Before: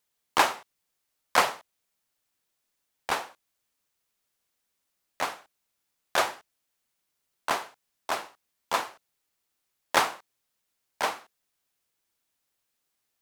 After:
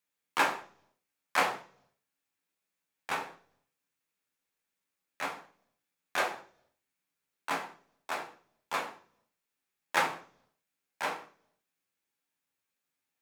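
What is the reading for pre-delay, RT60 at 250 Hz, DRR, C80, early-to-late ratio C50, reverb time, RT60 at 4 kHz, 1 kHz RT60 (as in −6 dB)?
11 ms, 0.70 s, 0.5 dB, 17.0 dB, 12.5 dB, 0.50 s, 0.60 s, 0.40 s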